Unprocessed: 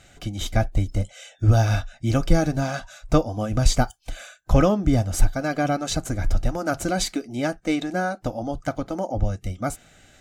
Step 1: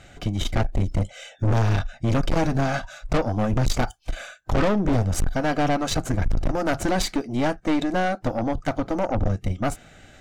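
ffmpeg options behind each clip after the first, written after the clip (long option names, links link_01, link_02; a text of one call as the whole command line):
ffmpeg -i in.wav -af "highshelf=frequency=4600:gain=-10,aeval=exprs='(tanh(20*val(0)+0.55)-tanh(0.55))/20':channel_layout=same,volume=8dB" out.wav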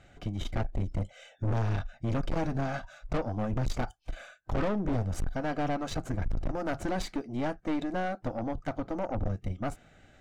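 ffmpeg -i in.wav -af "highshelf=frequency=3400:gain=-7.5,volume=-8.5dB" out.wav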